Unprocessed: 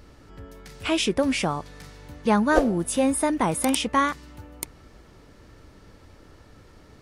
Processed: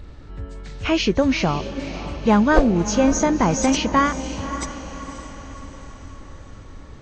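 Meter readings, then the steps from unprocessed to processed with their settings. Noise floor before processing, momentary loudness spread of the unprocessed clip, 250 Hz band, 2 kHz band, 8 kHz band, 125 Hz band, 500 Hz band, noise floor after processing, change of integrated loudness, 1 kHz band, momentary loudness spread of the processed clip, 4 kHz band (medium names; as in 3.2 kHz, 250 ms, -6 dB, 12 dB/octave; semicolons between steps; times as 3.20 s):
-52 dBFS, 17 LU, +5.5 dB, +3.5 dB, +3.0 dB, +8.0 dB, +4.0 dB, -41 dBFS, +3.5 dB, +3.5 dB, 20 LU, +2.5 dB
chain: knee-point frequency compression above 2.7 kHz 1.5:1; bass shelf 110 Hz +11.5 dB; in parallel at -7 dB: wavefolder -10.5 dBFS; on the sum: echo that smears into a reverb 554 ms, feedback 52%, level -11.5 dB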